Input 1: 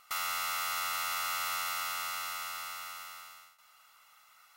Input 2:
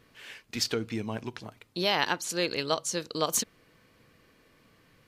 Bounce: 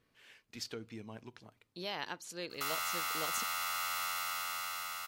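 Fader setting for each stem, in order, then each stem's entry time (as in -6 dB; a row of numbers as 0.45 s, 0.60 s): -2.5 dB, -13.5 dB; 2.50 s, 0.00 s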